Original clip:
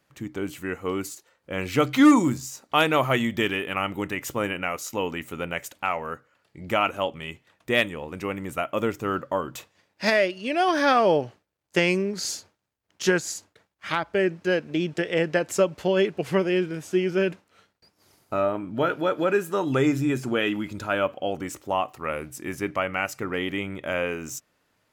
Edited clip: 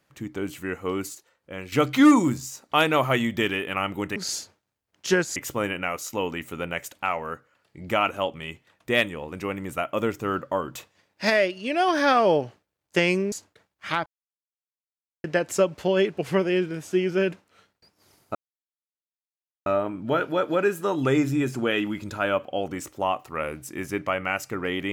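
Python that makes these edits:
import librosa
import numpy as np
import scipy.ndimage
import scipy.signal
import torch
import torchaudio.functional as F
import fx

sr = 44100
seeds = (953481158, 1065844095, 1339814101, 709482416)

y = fx.edit(x, sr, fx.fade_out_to(start_s=1.07, length_s=0.65, floor_db=-10.0),
    fx.move(start_s=12.12, length_s=1.2, to_s=4.16),
    fx.silence(start_s=14.06, length_s=1.18),
    fx.insert_silence(at_s=18.35, length_s=1.31), tone=tone)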